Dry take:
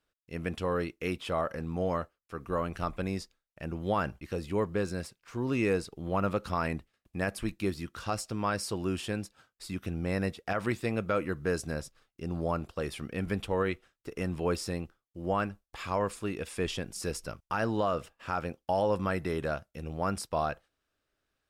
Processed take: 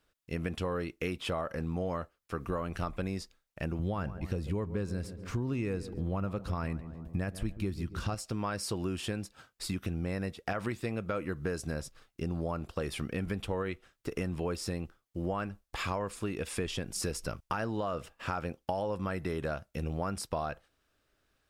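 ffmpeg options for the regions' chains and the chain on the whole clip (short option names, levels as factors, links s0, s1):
-filter_complex "[0:a]asettb=1/sr,asplit=3[s0][s1][s2];[s0]atrim=end=3.794[s3];[s1]atrim=start=3.79:end=8.15,asetpts=PTS-STARTPTS,afade=t=in:d=0.004:c=qsin,afade=t=out:st=4.356:d=0.004:c=qsin,lowshelf=f=200:g=10.5,asplit=2[s4][s5];[s5]adelay=139,lowpass=f=1100:p=1,volume=0.178,asplit=2[s6][s7];[s7]adelay=139,lowpass=f=1100:p=1,volume=0.46,asplit=2[s8][s9];[s9]adelay=139,lowpass=f=1100:p=1,volume=0.46,asplit=2[s10][s11];[s11]adelay=139,lowpass=f=1100:p=1,volume=0.46[s12];[s4][s6][s8][s10][s12]amix=inputs=5:normalize=0,atrim=end_sample=192276[s13];[s2]atrim=start=8.146[s14];[s3][s13]acrossfade=d=0.004:c1=hsin:c2=qsin[s15];[s15][s14]acrossfade=d=0.004:c1=qsin:c2=hsin,lowshelf=f=150:g=3,acompressor=threshold=0.0141:ratio=6,volume=2"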